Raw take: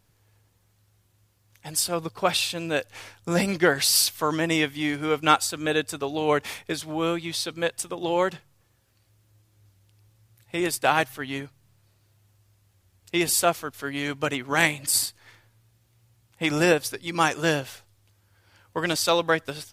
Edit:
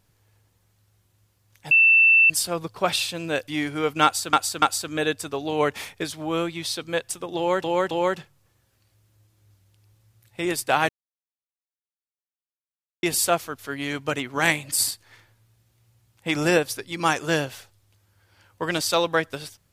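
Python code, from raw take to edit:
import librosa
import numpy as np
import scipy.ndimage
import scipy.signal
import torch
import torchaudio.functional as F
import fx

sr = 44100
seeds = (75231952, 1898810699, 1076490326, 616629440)

y = fx.edit(x, sr, fx.insert_tone(at_s=1.71, length_s=0.59, hz=2670.0, db=-12.0),
    fx.cut(start_s=2.89, length_s=1.86),
    fx.repeat(start_s=5.31, length_s=0.29, count=3),
    fx.repeat(start_s=8.06, length_s=0.27, count=3),
    fx.silence(start_s=11.04, length_s=2.14), tone=tone)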